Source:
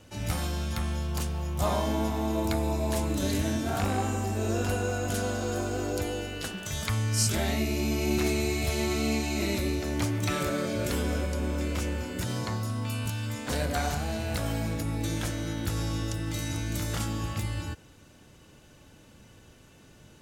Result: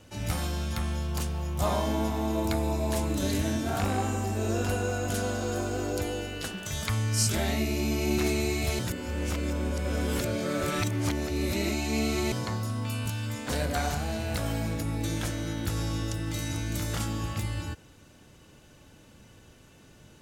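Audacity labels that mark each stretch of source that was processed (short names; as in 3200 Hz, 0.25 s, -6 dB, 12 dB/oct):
8.790000	12.320000	reverse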